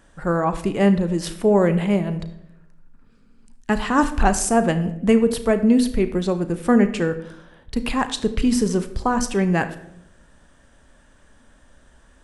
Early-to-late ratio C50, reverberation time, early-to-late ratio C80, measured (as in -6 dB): 12.5 dB, 0.80 s, 15.5 dB